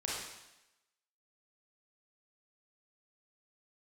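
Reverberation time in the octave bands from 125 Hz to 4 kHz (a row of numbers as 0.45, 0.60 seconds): 0.85, 0.90, 0.95, 0.95, 0.95, 0.95 seconds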